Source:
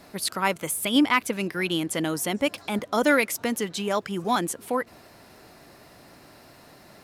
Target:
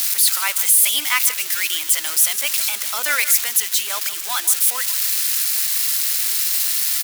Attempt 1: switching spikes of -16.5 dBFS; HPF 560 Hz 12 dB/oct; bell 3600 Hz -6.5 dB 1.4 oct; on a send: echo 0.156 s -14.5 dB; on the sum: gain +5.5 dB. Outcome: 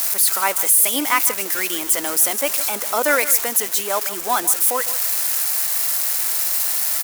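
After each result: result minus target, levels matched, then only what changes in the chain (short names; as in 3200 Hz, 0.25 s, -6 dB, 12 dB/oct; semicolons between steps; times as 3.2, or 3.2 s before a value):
500 Hz band +15.5 dB; 4000 Hz band -4.5 dB
change: HPF 1600 Hz 12 dB/oct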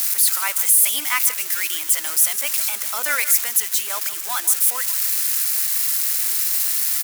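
4000 Hz band -4.5 dB
remove: bell 3600 Hz -6.5 dB 1.4 oct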